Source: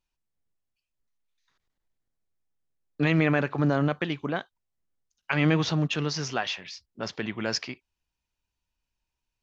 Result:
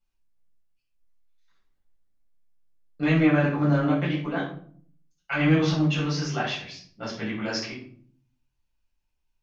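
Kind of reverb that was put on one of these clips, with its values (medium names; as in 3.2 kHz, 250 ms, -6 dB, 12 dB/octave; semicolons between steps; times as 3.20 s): simulated room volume 580 m³, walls furnished, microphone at 7 m; trim -9.5 dB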